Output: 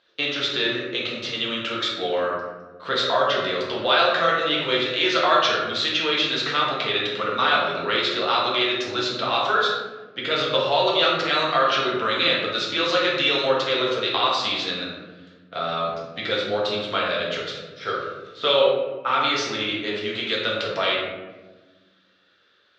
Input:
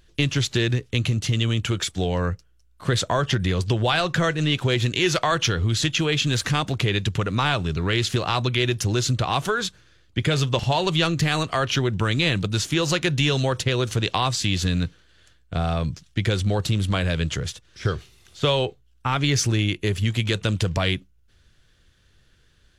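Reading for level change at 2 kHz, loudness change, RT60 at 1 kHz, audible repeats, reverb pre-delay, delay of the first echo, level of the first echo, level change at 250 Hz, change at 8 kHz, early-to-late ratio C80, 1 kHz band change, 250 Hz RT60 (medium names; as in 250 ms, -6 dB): +3.0 dB, +1.0 dB, 1.1 s, no echo, 4 ms, no echo, no echo, -5.5 dB, -11.5 dB, 4.0 dB, +5.0 dB, 2.0 s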